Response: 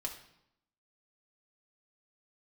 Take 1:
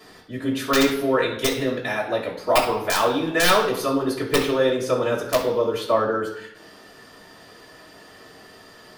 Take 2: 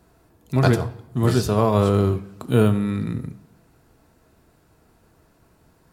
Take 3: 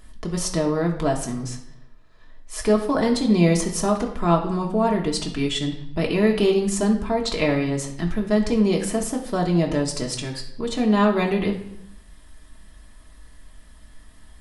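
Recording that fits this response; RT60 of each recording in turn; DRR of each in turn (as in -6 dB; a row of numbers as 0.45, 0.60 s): 3; 0.80, 0.80, 0.80 s; -7.5, 9.0, -0.5 dB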